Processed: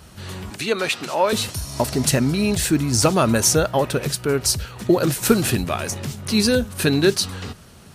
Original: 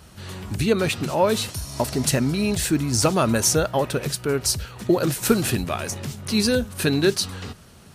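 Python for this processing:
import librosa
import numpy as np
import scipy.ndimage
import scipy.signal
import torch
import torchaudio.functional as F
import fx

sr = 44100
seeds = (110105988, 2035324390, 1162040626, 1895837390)

y = fx.weighting(x, sr, curve='A', at=(0.5, 1.33))
y = F.gain(torch.from_numpy(y), 2.5).numpy()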